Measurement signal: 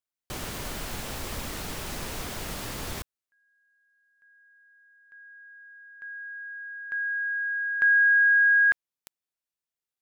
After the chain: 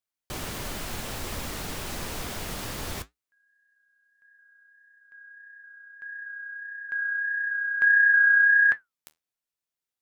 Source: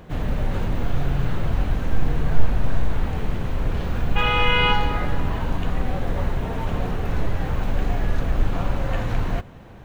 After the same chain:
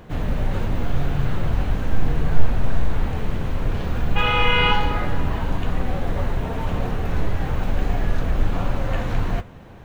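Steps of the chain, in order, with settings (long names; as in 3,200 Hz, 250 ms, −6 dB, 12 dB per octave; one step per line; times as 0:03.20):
flanger 1.6 Hz, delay 8.1 ms, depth 5.9 ms, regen −66%
level +5 dB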